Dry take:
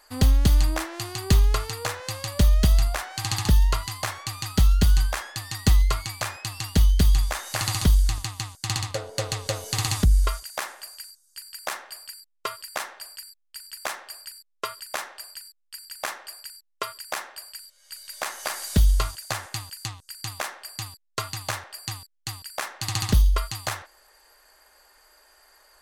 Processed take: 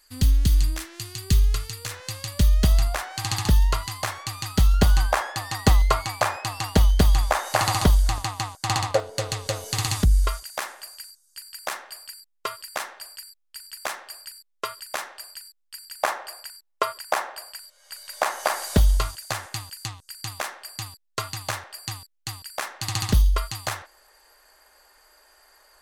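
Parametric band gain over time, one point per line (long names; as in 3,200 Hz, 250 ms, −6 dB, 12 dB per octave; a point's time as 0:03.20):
parametric band 730 Hz 2.2 octaves
−15 dB
from 0:01.91 −7 dB
from 0:02.63 +2 dB
from 0:04.74 +12 dB
from 0:09.00 +1 dB
from 0:16.03 +10.5 dB
from 0:18.97 +1 dB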